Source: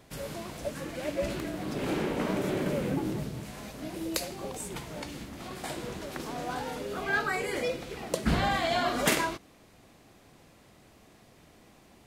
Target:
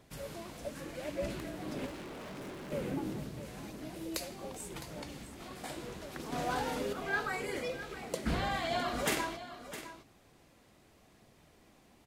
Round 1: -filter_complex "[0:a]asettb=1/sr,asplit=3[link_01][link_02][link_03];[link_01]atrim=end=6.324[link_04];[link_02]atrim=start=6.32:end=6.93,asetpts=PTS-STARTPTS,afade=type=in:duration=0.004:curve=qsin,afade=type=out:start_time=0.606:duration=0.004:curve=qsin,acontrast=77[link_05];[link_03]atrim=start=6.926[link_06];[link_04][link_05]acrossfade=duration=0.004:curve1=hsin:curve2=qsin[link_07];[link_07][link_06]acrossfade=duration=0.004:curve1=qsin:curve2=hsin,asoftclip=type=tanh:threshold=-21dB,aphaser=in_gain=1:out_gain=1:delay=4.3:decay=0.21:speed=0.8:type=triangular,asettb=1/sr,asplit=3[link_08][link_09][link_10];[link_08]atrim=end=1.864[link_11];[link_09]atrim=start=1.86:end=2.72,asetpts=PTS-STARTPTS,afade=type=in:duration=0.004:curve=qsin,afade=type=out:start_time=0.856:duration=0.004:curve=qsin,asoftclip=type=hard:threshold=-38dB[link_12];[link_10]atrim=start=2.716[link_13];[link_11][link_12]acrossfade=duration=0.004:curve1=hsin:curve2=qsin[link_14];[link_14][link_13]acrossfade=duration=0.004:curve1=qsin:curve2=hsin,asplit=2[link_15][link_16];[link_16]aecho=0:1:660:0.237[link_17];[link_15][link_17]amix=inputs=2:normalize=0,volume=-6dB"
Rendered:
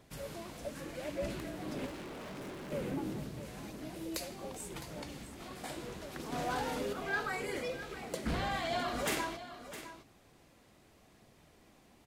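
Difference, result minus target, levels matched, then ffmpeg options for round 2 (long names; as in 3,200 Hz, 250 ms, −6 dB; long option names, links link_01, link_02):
soft clipping: distortion +12 dB
-filter_complex "[0:a]asettb=1/sr,asplit=3[link_01][link_02][link_03];[link_01]atrim=end=6.324[link_04];[link_02]atrim=start=6.32:end=6.93,asetpts=PTS-STARTPTS,afade=type=in:duration=0.004:curve=qsin,afade=type=out:start_time=0.606:duration=0.004:curve=qsin,acontrast=77[link_05];[link_03]atrim=start=6.926[link_06];[link_04][link_05]acrossfade=duration=0.004:curve1=hsin:curve2=qsin[link_07];[link_07][link_06]acrossfade=duration=0.004:curve1=qsin:curve2=hsin,asoftclip=type=tanh:threshold=-12.5dB,aphaser=in_gain=1:out_gain=1:delay=4.3:decay=0.21:speed=0.8:type=triangular,asettb=1/sr,asplit=3[link_08][link_09][link_10];[link_08]atrim=end=1.864[link_11];[link_09]atrim=start=1.86:end=2.72,asetpts=PTS-STARTPTS,afade=type=in:duration=0.004:curve=qsin,afade=type=out:start_time=0.856:duration=0.004:curve=qsin,asoftclip=type=hard:threshold=-38dB[link_12];[link_10]atrim=start=2.716[link_13];[link_11][link_12]acrossfade=duration=0.004:curve1=hsin:curve2=qsin[link_14];[link_14][link_13]acrossfade=duration=0.004:curve1=qsin:curve2=hsin,asplit=2[link_15][link_16];[link_16]aecho=0:1:660:0.237[link_17];[link_15][link_17]amix=inputs=2:normalize=0,volume=-6dB"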